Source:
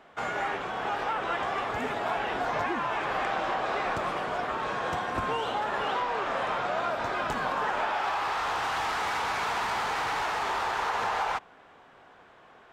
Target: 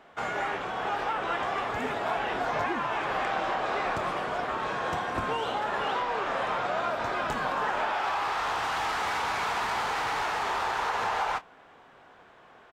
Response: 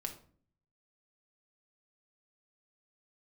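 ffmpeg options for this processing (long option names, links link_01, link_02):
-filter_complex "[0:a]asplit=2[link_01][link_02];[link_02]adelay=27,volume=-13.5dB[link_03];[link_01][link_03]amix=inputs=2:normalize=0"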